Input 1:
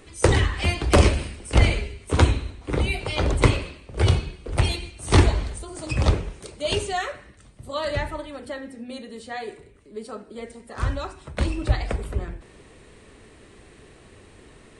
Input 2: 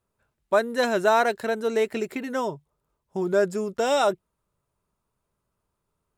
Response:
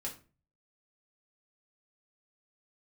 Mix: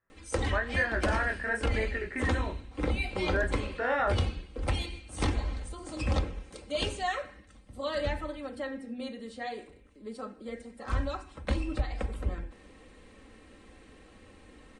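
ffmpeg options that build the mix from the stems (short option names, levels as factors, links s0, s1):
-filter_complex "[0:a]highshelf=f=8100:g=-9.5,aecho=1:1:3.8:0.59,adelay=100,volume=0.531[s0];[1:a]lowpass=f=1800:t=q:w=10,flanger=delay=18:depth=6.9:speed=1.1,volume=0.501,asplit=2[s1][s2];[s2]volume=0.473[s3];[2:a]atrim=start_sample=2205[s4];[s3][s4]afir=irnorm=-1:irlink=0[s5];[s0][s1][s5]amix=inputs=3:normalize=0,alimiter=limit=0.126:level=0:latency=1:release=429"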